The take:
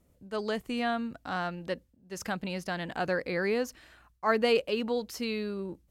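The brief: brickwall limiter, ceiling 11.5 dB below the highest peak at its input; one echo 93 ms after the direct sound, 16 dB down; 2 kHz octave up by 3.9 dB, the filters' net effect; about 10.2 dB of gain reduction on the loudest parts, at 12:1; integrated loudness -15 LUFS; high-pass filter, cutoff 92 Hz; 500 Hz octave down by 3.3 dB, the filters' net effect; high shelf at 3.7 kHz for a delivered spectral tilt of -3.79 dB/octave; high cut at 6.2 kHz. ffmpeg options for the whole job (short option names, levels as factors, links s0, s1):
-af "highpass=92,lowpass=6200,equalizer=f=500:t=o:g=-4,equalizer=f=2000:t=o:g=7,highshelf=f=3700:g=-6.5,acompressor=threshold=0.0316:ratio=12,alimiter=level_in=2.51:limit=0.0631:level=0:latency=1,volume=0.398,aecho=1:1:93:0.158,volume=21.1"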